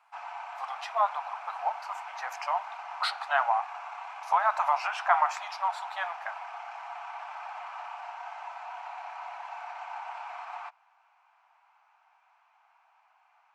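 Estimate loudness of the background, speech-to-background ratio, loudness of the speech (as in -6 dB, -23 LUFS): -40.5 LUFS, 10.5 dB, -30.0 LUFS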